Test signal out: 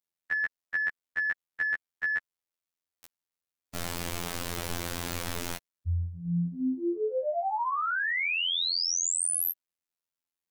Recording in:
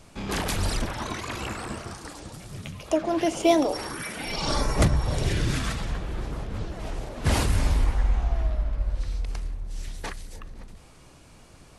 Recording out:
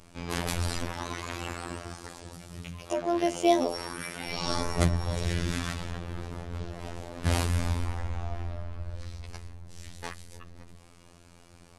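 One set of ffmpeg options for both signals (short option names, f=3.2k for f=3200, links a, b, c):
-af "acontrast=22,afftfilt=real='hypot(re,im)*cos(PI*b)':imag='0':win_size=2048:overlap=0.75,volume=-5dB"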